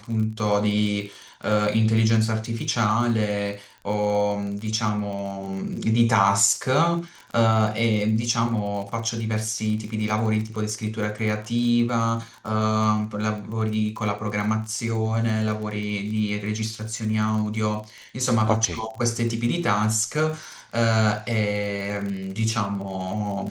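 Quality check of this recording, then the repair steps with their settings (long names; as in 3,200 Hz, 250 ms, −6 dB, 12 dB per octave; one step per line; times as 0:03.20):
surface crackle 31 per second −31 dBFS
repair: click removal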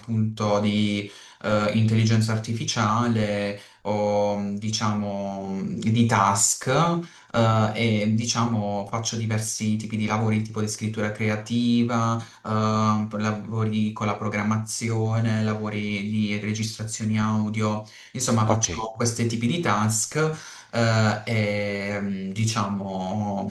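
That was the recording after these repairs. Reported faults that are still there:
none of them is left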